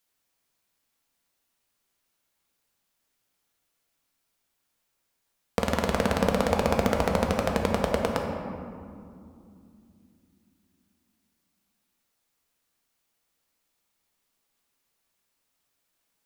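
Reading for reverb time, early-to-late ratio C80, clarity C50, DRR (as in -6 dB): 2.6 s, 4.0 dB, 3.0 dB, 1.0 dB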